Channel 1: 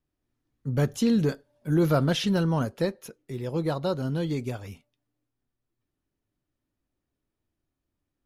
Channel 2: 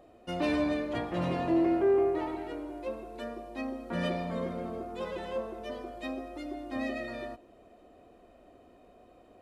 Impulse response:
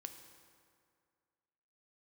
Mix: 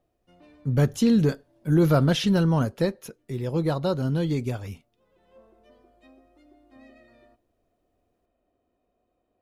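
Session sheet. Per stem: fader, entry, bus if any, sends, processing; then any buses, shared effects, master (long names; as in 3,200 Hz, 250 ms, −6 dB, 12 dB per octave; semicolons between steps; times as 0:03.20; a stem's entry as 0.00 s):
+1.5 dB, 0.00 s, no send, no processing
−18.5 dB, 0.00 s, no send, automatic ducking −23 dB, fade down 1.45 s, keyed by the first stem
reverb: not used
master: low-shelf EQ 170 Hz +4.5 dB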